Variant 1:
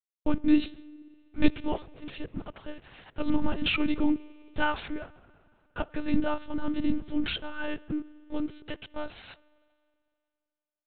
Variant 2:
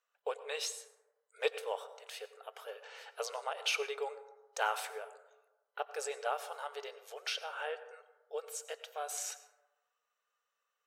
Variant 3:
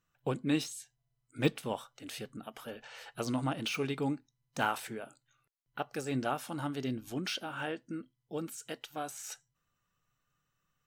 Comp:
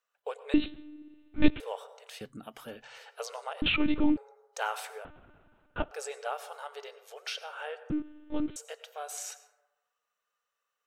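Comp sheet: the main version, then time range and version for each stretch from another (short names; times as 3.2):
2
0.54–1.6 from 1
2.21–2.98 from 3
3.62–4.17 from 1
5.05–5.91 from 1
7.9–8.56 from 1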